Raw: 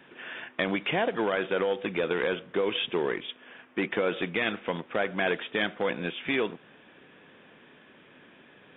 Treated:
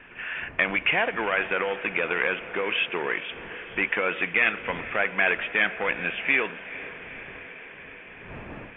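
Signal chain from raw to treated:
wind on the microphone 320 Hz −46 dBFS
drawn EQ curve 350 Hz 0 dB, 2,600 Hz +15 dB, 4,100 Hz −10 dB
on a send: feedback delay with all-pass diffusion 455 ms, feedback 72%, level −15.5 dB
on the sum: level −4.5 dB

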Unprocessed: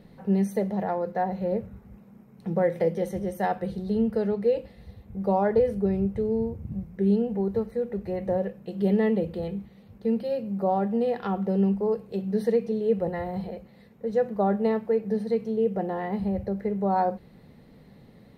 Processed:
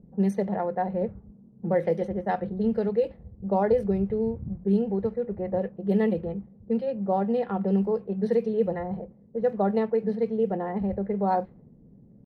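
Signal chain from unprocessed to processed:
low-pass that shuts in the quiet parts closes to 320 Hz, open at −19 dBFS
tempo change 1.5×

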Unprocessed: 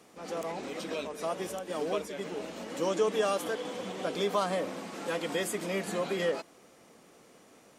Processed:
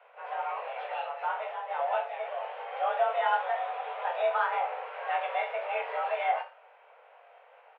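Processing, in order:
on a send: reverse bouncing-ball delay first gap 20 ms, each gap 1.1×, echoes 5
on the sum: single-sideband voice off tune +250 Hz 240–2,600 Hz

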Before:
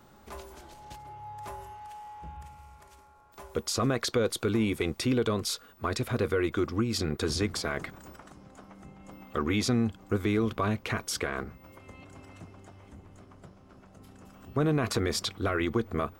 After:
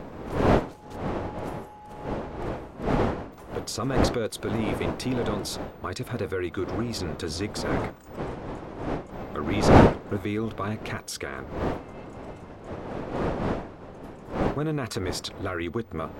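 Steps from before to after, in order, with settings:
wind on the microphone 570 Hz −27 dBFS
level −2 dB

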